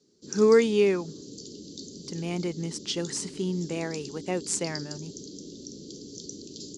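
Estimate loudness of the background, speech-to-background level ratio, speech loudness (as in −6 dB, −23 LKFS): −41.0 LKFS, 14.0 dB, −27.0 LKFS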